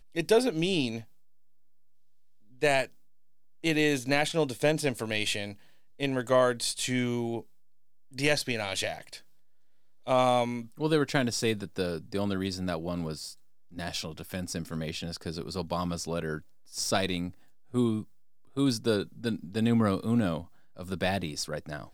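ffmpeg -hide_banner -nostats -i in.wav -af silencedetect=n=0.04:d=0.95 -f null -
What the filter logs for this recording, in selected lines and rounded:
silence_start: 0.98
silence_end: 2.63 | silence_duration: 1.65
silence_start: 8.93
silence_end: 10.08 | silence_duration: 1.15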